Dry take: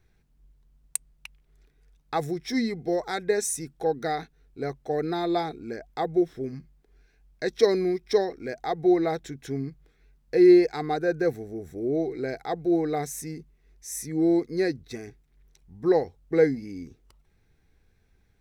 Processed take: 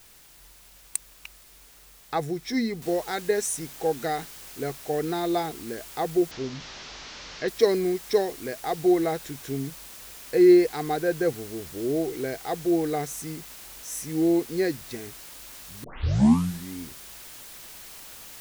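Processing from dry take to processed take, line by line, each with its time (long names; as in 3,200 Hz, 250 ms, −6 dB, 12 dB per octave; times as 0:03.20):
0:02.82: noise floor change −53 dB −44 dB
0:06.31–0:07.48: linear delta modulator 32 kbit/s, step −34.5 dBFS
0:15.84: tape start 0.94 s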